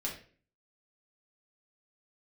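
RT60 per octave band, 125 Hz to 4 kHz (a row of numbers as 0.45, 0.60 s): 0.60, 0.55, 0.50, 0.40, 0.40, 0.35 s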